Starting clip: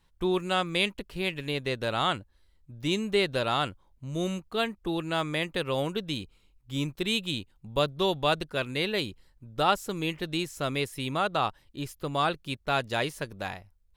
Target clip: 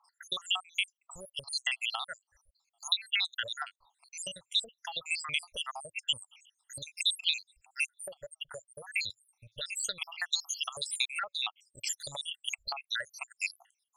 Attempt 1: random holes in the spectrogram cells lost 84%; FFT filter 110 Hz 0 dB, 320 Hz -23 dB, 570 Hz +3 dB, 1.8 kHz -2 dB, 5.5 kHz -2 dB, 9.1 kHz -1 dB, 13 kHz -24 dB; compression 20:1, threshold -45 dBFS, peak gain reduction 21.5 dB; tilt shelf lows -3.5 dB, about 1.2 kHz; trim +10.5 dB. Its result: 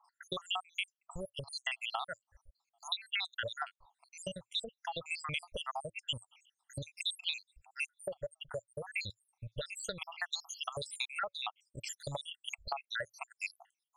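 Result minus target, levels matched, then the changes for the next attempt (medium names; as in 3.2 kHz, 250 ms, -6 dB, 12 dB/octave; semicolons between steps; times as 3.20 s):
1 kHz band +7.0 dB
change: tilt shelf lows -13.5 dB, about 1.2 kHz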